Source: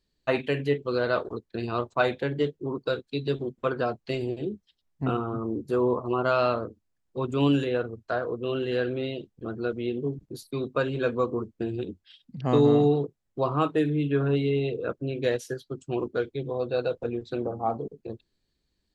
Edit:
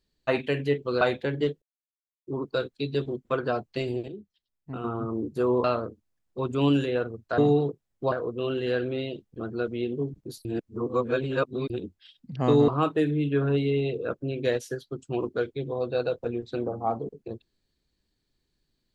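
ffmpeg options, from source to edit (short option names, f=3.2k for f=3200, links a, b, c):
-filter_complex "[0:a]asplit=11[a][b][c][d][e][f][g][h][i][j][k];[a]atrim=end=1.012[l];[b]atrim=start=1.988:end=2.6,asetpts=PTS-STARTPTS,afade=t=out:st=0.608:d=0.004:c=hsin,apad=pad_dur=0.65[m];[c]atrim=start=2.6:end=4.412,asetpts=PTS-STARTPTS,afade=t=in:d=0.004:c=hsin[n];[d]atrim=start=4.408:end=5.172,asetpts=PTS-STARTPTS,volume=-9dB[o];[e]atrim=start=5.168:end=5.972[p];[f]atrim=start=6.428:end=8.172[q];[g]atrim=start=12.728:end=13.472[r];[h]atrim=start=8.168:end=10.502[s];[i]atrim=start=10.498:end=11.752,asetpts=PTS-STARTPTS,areverse[t];[j]atrim=start=11.748:end=12.732[u];[k]atrim=start=13.468[v];[m][n]concat=n=2:v=0:a=1[w];[l][w]acrossfade=d=0.004:c1=hsin:c2=hsin[x];[x][o]acrossfade=d=0.004:c1=hsin:c2=hsin[y];[y][p]acrossfade=d=0.004:c1=hsin:c2=hsin[z];[z][q]acrossfade=d=0.004:c1=hsin:c2=hsin[aa];[aa][r]acrossfade=d=0.004:c1=hsin:c2=hsin[ab];[ab][s]acrossfade=d=0.004:c1=hsin:c2=hsin[ac];[ac][t]acrossfade=d=0.004:c1=hsin:c2=hsin[ad];[ad][u]acrossfade=d=0.004:c1=hsin:c2=hsin[ae];[ae][v]acrossfade=d=0.004:c1=hsin:c2=hsin"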